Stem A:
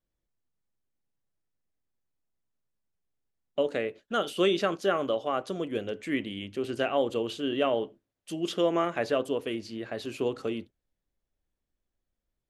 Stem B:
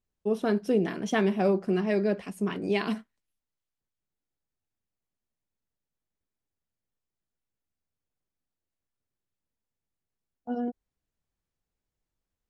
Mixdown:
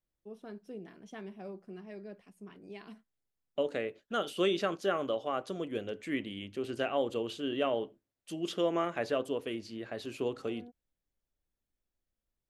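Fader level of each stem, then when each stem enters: -4.5, -20.0 dB; 0.00, 0.00 s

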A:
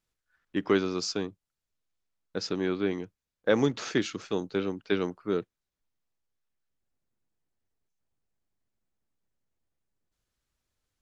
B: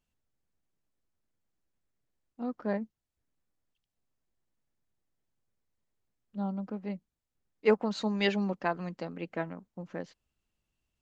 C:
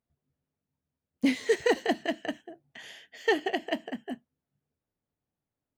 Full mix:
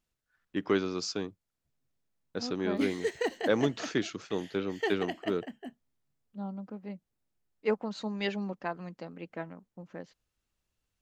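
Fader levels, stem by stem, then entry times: -3.0, -4.5, -6.5 dB; 0.00, 0.00, 1.55 s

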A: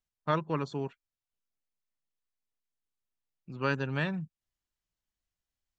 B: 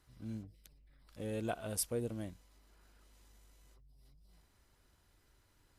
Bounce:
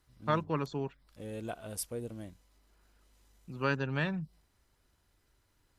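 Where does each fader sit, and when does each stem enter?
-1.0, -2.0 dB; 0.00, 0.00 s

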